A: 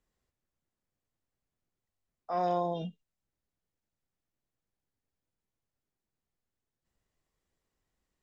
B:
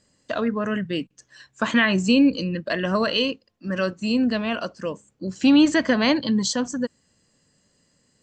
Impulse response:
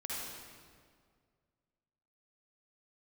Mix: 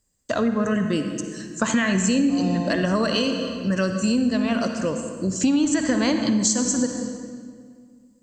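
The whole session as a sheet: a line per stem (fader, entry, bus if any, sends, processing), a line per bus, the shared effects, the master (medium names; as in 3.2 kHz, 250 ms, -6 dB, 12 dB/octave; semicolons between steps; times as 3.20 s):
0.0 dB, 0.00 s, no send, treble shelf 4.7 kHz +11.5 dB
+0.5 dB, 0.00 s, send -5 dB, gate with hold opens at -49 dBFS; resonant high shelf 5.1 kHz +11.5 dB, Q 1.5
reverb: on, RT60 2.0 s, pre-delay 47 ms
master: bass shelf 170 Hz +8.5 dB; compression 5:1, threshold -18 dBFS, peak gain reduction 11.5 dB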